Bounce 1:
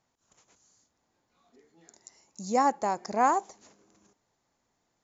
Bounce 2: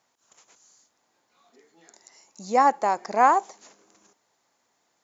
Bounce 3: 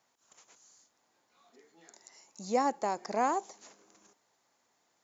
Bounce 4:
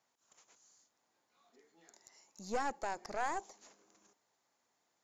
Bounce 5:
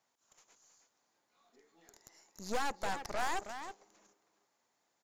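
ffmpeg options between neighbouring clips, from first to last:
ffmpeg -i in.wav -filter_complex "[0:a]acrossover=split=4100[link_01][link_02];[link_02]acompressor=threshold=-53dB:ratio=4:attack=1:release=60[link_03];[link_01][link_03]amix=inputs=2:normalize=0,highpass=frequency=560:poles=1,volume=7.5dB" out.wav
ffmpeg -i in.wav -filter_complex "[0:a]acrossover=split=500|3000[link_01][link_02][link_03];[link_02]acompressor=threshold=-33dB:ratio=2.5[link_04];[link_01][link_04][link_03]amix=inputs=3:normalize=0,volume=-3dB" out.wav
ffmpeg -i in.wav -af "aeval=exprs='(tanh(22.4*val(0)+0.65)-tanh(0.65))/22.4':channel_layout=same,volume=-2.5dB" out.wav
ffmpeg -i in.wav -filter_complex "[0:a]asplit=2[link_01][link_02];[link_02]adelay=320,highpass=300,lowpass=3400,asoftclip=type=hard:threshold=-35dB,volume=-7dB[link_03];[link_01][link_03]amix=inputs=2:normalize=0,aeval=exprs='0.0531*(cos(1*acos(clip(val(0)/0.0531,-1,1)))-cos(1*PI/2))+0.00944*(cos(8*acos(clip(val(0)/0.0531,-1,1)))-cos(8*PI/2))':channel_layout=same" out.wav

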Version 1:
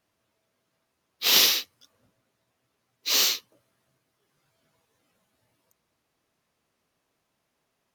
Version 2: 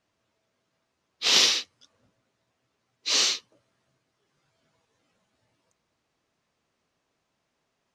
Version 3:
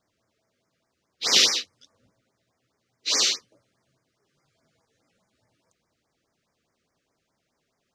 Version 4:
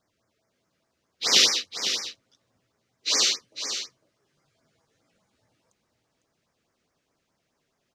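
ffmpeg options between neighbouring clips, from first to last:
ffmpeg -i in.wav -af "lowpass=frequency=8000:width=0.5412,lowpass=frequency=8000:width=1.3066" out.wav
ffmpeg -i in.wav -af "afftfilt=real='re*(1-between(b*sr/1024,790*pow(3500/790,0.5+0.5*sin(2*PI*4.8*pts/sr))/1.41,790*pow(3500/790,0.5+0.5*sin(2*PI*4.8*pts/sr))*1.41))':imag='im*(1-between(b*sr/1024,790*pow(3500/790,0.5+0.5*sin(2*PI*4.8*pts/sr))/1.41,790*pow(3500/790,0.5+0.5*sin(2*PI*4.8*pts/sr))*1.41))':win_size=1024:overlap=0.75,volume=2dB" out.wav
ffmpeg -i in.wav -af "aecho=1:1:503:0.355" out.wav

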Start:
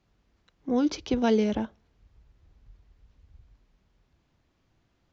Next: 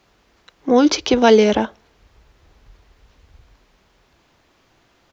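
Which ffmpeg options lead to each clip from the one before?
ffmpeg -i in.wav -filter_complex "[0:a]firequalizer=gain_entry='entry(110,0);entry(400,10);entry(940,12)':delay=0.05:min_phase=1,asplit=2[link_01][link_02];[link_02]alimiter=limit=-11dB:level=0:latency=1:release=171,volume=-2.5dB[link_03];[link_01][link_03]amix=inputs=2:normalize=0" out.wav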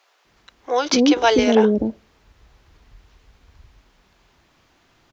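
ffmpeg -i in.wav -filter_complex "[0:a]acrossover=split=490[link_01][link_02];[link_01]adelay=250[link_03];[link_03][link_02]amix=inputs=2:normalize=0" out.wav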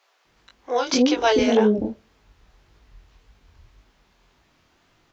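ffmpeg -i in.wav -af "flanger=delay=19:depth=6.8:speed=1.8" out.wav

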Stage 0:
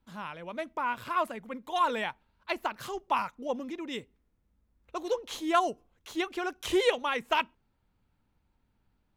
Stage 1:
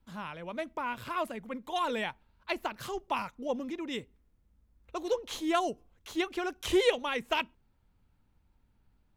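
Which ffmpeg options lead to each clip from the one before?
ffmpeg -i in.wav -filter_complex "[0:a]acrossover=split=800|1600[link_01][link_02][link_03];[link_02]acompressor=threshold=-43dB:ratio=6[link_04];[link_01][link_04][link_03]amix=inputs=3:normalize=0,lowshelf=frequency=110:gain=6.5" out.wav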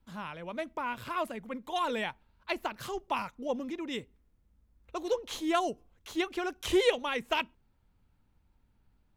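ffmpeg -i in.wav -af anull out.wav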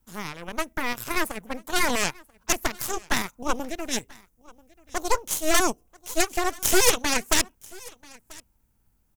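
ffmpeg -i in.wav -af "aeval=exprs='0.211*(cos(1*acos(clip(val(0)/0.211,-1,1)))-cos(1*PI/2))+0.106*(cos(8*acos(clip(val(0)/0.211,-1,1)))-cos(8*PI/2))':channel_layout=same,aecho=1:1:987:0.0631,aexciter=amount=2:drive=9.9:freq=5500" out.wav

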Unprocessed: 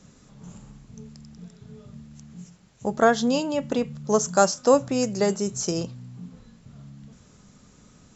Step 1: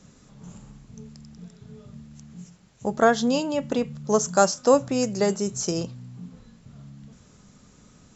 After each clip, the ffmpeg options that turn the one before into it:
ffmpeg -i in.wav -af anull out.wav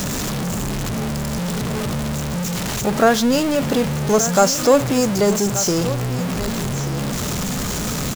ffmpeg -i in.wav -af "aeval=exprs='val(0)+0.5*0.1*sgn(val(0))':channel_layout=same,aecho=1:1:1180:0.224,volume=2dB" out.wav

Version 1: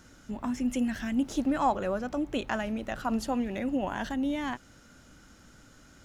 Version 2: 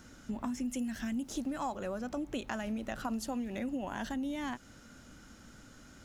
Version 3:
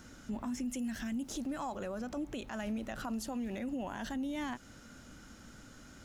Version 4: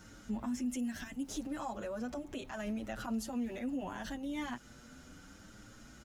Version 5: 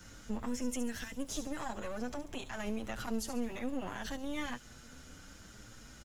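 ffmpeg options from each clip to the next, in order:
ffmpeg -i in.wav -filter_complex "[0:a]equalizer=frequency=230:width_type=o:width=0.34:gain=4,acrossover=split=4900[link_01][link_02];[link_01]acompressor=threshold=-34dB:ratio=5[link_03];[link_03][link_02]amix=inputs=2:normalize=0" out.wav
ffmpeg -i in.wav -af "alimiter=level_in=7.5dB:limit=-24dB:level=0:latency=1:release=38,volume=-7.5dB,volume=1dB" out.wav
ffmpeg -i in.wav -filter_complex "[0:a]asplit=2[link_01][link_02];[link_02]adelay=7.3,afreqshift=0.73[link_03];[link_01][link_03]amix=inputs=2:normalize=1,volume=2dB" out.wav
ffmpeg -i in.wav -filter_complex "[0:a]acrossover=split=130|1600|3200[link_01][link_02][link_03][link_04];[link_02]aeval=exprs='max(val(0),0)':channel_layout=same[link_05];[link_04]aecho=1:1:70|140|210|280:0.376|0.15|0.0601|0.0241[link_06];[link_01][link_05][link_03][link_06]amix=inputs=4:normalize=0,volume=3.5dB" out.wav

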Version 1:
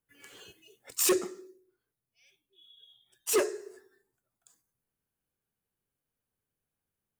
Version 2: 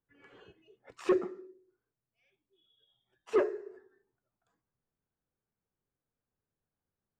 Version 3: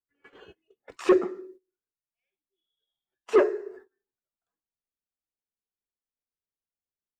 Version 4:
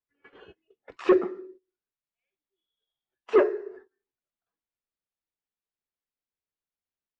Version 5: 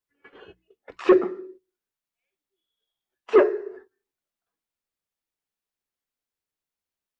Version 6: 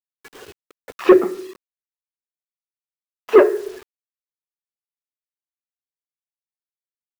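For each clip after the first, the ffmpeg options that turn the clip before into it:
ffmpeg -i in.wav -af "lowpass=1500" out.wav
ffmpeg -i in.wav -af "equalizer=frequency=130:width_type=o:width=0.82:gain=-9.5,agate=range=-21dB:threshold=-57dB:ratio=16:detection=peak,volume=8dB" out.wav
ffmpeg -i in.wav -af "lowpass=3700" out.wav
ffmpeg -i in.wav -af "bandreject=frequency=60:width_type=h:width=6,bandreject=frequency=120:width_type=h:width=6,bandreject=frequency=180:width_type=h:width=6,volume=3.5dB" out.wav
ffmpeg -i in.wav -af "acrusher=bits=7:mix=0:aa=0.000001,volume=5.5dB" out.wav

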